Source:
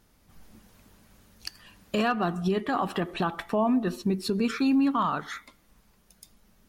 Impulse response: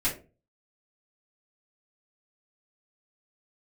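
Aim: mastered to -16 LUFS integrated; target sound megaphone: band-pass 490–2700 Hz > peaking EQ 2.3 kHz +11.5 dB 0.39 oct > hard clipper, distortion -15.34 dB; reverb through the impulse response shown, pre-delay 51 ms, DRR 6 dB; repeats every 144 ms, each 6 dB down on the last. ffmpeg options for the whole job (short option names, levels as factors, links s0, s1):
-filter_complex "[0:a]aecho=1:1:144|288|432|576|720|864:0.501|0.251|0.125|0.0626|0.0313|0.0157,asplit=2[s0][s1];[1:a]atrim=start_sample=2205,adelay=51[s2];[s1][s2]afir=irnorm=-1:irlink=0,volume=0.188[s3];[s0][s3]amix=inputs=2:normalize=0,highpass=490,lowpass=2700,equalizer=f=2300:t=o:w=0.39:g=11.5,asoftclip=type=hard:threshold=0.0794,volume=4.73"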